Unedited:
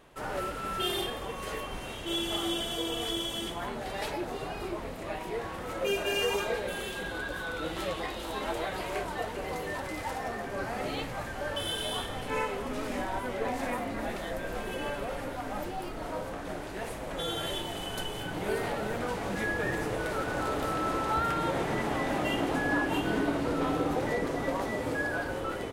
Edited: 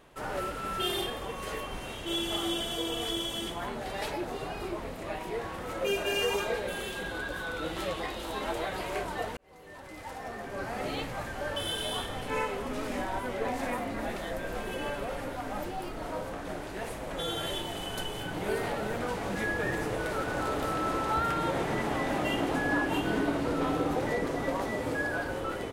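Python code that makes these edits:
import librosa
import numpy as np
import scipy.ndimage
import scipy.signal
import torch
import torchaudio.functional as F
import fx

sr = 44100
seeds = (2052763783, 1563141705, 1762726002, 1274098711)

y = fx.edit(x, sr, fx.fade_in_span(start_s=9.37, length_s=1.52), tone=tone)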